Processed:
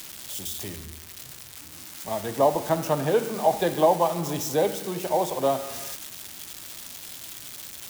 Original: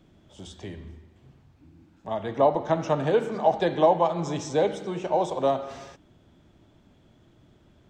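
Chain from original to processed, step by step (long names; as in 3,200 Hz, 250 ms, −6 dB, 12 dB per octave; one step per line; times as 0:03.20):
spike at every zero crossing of −24.5 dBFS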